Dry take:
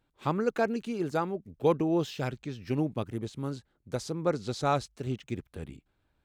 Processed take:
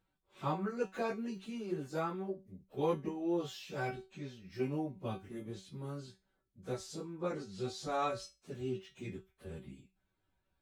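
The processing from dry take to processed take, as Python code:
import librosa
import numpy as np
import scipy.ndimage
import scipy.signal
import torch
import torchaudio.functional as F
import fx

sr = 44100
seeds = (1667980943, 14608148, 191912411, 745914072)

y = fx.stretch_vocoder_free(x, sr, factor=1.7)
y = fx.comb_fb(y, sr, f0_hz=190.0, decay_s=0.26, harmonics='all', damping=0.0, mix_pct=80)
y = F.gain(torch.from_numpy(y), 5.0).numpy()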